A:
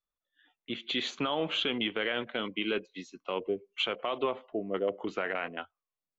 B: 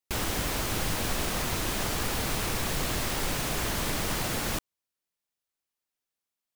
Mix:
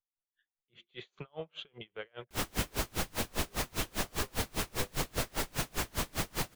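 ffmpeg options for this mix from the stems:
ffmpeg -i stem1.wav -i stem2.wav -filter_complex "[0:a]firequalizer=gain_entry='entry(160,0);entry(250,-23);entry(380,-7);entry(3000,-12)':delay=0.05:min_phase=1,volume=1dB[link_01];[1:a]adelay=2200,volume=0.5dB[link_02];[link_01][link_02]amix=inputs=2:normalize=0,aeval=exprs='val(0)*pow(10,-34*(0.5-0.5*cos(2*PI*5*n/s))/20)':channel_layout=same" out.wav

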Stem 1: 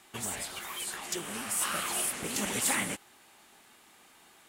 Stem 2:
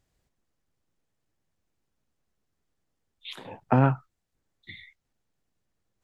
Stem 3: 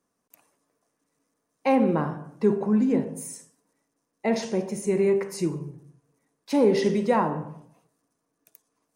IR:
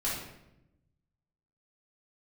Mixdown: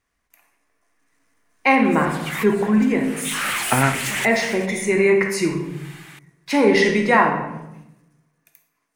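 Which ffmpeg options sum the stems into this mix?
-filter_complex "[0:a]asoftclip=type=hard:threshold=-33.5dB,adelay=1700,volume=1dB[link_01];[1:a]volume=-5dB,asplit=2[link_02][link_03];[link_03]volume=-14.5dB[link_04];[2:a]volume=-4.5dB,asplit=3[link_05][link_06][link_07];[link_06]volume=-7.5dB[link_08];[link_07]apad=whole_len=272955[link_09];[link_01][link_09]sidechaincompress=threshold=-42dB:ratio=12:attack=16:release=286[link_10];[3:a]atrim=start_sample=2205[link_11];[link_04][link_08]amix=inputs=2:normalize=0[link_12];[link_12][link_11]afir=irnorm=-1:irlink=0[link_13];[link_10][link_02][link_05][link_13]amix=inputs=4:normalize=0,equalizer=frequency=125:width_type=o:width=1:gain=-5,equalizer=frequency=250:width_type=o:width=1:gain=-3,equalizer=frequency=500:width_type=o:width=1:gain=-4,equalizer=frequency=2000:width_type=o:width=1:gain=11,dynaudnorm=framelen=300:gausssize=7:maxgain=11dB"

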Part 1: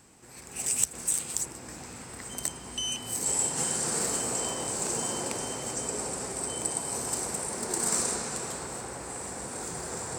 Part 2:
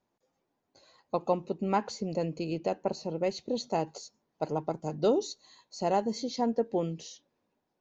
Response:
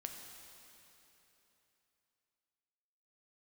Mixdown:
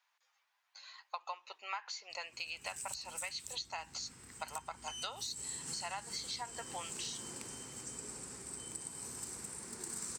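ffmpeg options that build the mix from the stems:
-filter_complex "[0:a]equalizer=frequency=640:width=1.3:gain=-12,adelay=2100,volume=-11.5dB[link_01];[1:a]highpass=frequency=1000:width=0.5412,highpass=frequency=1000:width=1.3066,equalizer=frequency=2400:width_type=o:width=2.2:gain=8.5,volume=3dB[link_02];[link_01][link_02]amix=inputs=2:normalize=0,acrossover=split=120[link_03][link_04];[link_04]acompressor=threshold=-38dB:ratio=10[link_05];[link_03][link_05]amix=inputs=2:normalize=0"

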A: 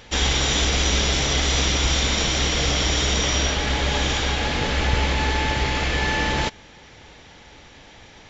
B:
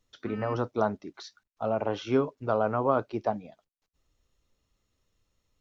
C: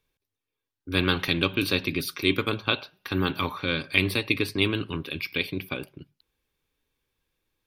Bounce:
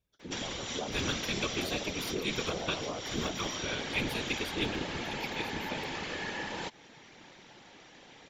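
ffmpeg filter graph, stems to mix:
ffmpeg -i stem1.wav -i stem2.wav -i stem3.wav -filter_complex "[0:a]lowshelf=frequency=140:width_type=q:width=1.5:gain=-13,acompressor=threshold=-27dB:ratio=6,adelay=200,volume=-1.5dB[link_01];[1:a]equalizer=frequency=2600:width=0.73:gain=-13.5,volume=-5.5dB,asplit=2[link_02][link_03];[2:a]volume=-4dB[link_04];[link_03]apad=whole_len=374745[link_05];[link_01][link_05]sidechaincompress=threshold=-35dB:ratio=8:attack=40:release=208[link_06];[link_06][link_02][link_04]amix=inputs=3:normalize=0,afftfilt=real='hypot(re,im)*cos(2*PI*random(0))':imag='hypot(re,im)*sin(2*PI*random(1))':win_size=512:overlap=0.75" out.wav

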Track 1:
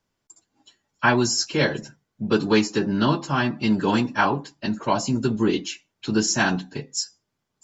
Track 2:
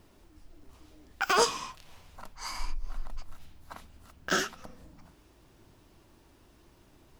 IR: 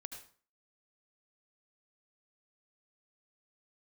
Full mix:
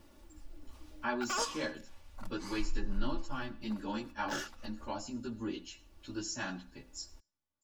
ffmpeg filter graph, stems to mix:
-filter_complex "[0:a]asplit=2[link_01][link_02];[link_02]adelay=11.5,afreqshift=0.27[link_03];[link_01][link_03]amix=inputs=2:normalize=1,volume=-16.5dB,asplit=3[link_04][link_05][link_06];[link_05]volume=-8dB[link_07];[1:a]volume=-1.5dB[link_08];[link_06]apad=whole_len=317412[link_09];[link_08][link_09]sidechaincompress=threshold=-44dB:ratio=8:attack=12:release=1160[link_10];[2:a]atrim=start_sample=2205[link_11];[link_07][link_11]afir=irnorm=-1:irlink=0[link_12];[link_04][link_10][link_12]amix=inputs=3:normalize=0,aecho=1:1:3.5:0.54,asubboost=boost=2.5:cutoff=100"

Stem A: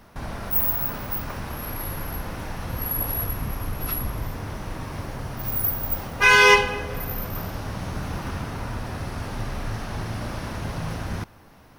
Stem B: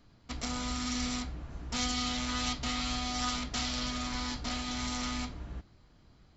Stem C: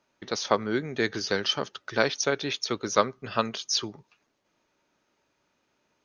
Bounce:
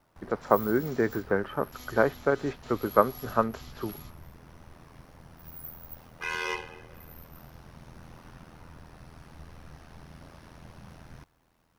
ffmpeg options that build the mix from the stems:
ffmpeg -i stem1.wav -i stem2.wav -i stem3.wav -filter_complex "[0:a]acrusher=bits=8:mix=0:aa=0.5,aeval=exprs='val(0)*sin(2*PI*41*n/s)':channel_layout=same,volume=-15.5dB[link_01];[1:a]volume=-17dB[link_02];[2:a]lowpass=frequency=1500:width=0.5412,lowpass=frequency=1500:width=1.3066,volume=2dB,asplit=2[link_03][link_04];[link_04]apad=whole_len=280853[link_05];[link_02][link_05]sidechaingate=range=-33dB:threshold=-55dB:ratio=16:detection=peak[link_06];[link_01][link_06][link_03]amix=inputs=3:normalize=0" out.wav

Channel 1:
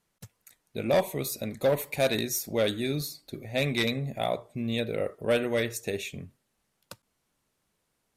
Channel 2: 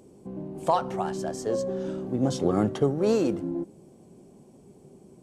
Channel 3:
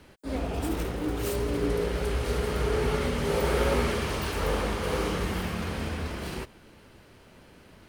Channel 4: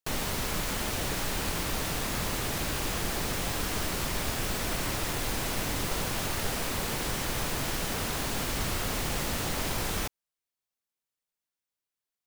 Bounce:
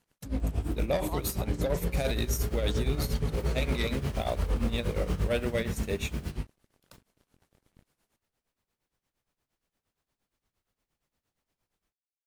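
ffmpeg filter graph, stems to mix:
ffmpeg -i stem1.wav -i stem2.wav -i stem3.wav -i stem4.wav -filter_complex "[0:a]volume=2dB,asplit=2[link_01][link_02];[1:a]tiltshelf=frequency=970:gain=-7.5,acompressor=mode=upward:threshold=-30dB:ratio=2.5,adelay=400,volume=-10dB[link_03];[2:a]bass=frequency=250:gain=14,treble=frequency=4000:gain=1,flanger=delay=18:depth=5.5:speed=0.34,aeval=exprs='sgn(val(0))*max(abs(val(0))-0.00841,0)':channel_layout=same,volume=-4dB[link_04];[3:a]adelay=1850,volume=-16dB[link_05];[link_02]apad=whole_len=622512[link_06];[link_05][link_06]sidechaingate=range=-33dB:threshold=-43dB:ratio=16:detection=peak[link_07];[link_01][link_03][link_04][link_07]amix=inputs=4:normalize=0,tremolo=f=8.6:d=0.79,alimiter=limit=-19dB:level=0:latency=1:release=30" out.wav

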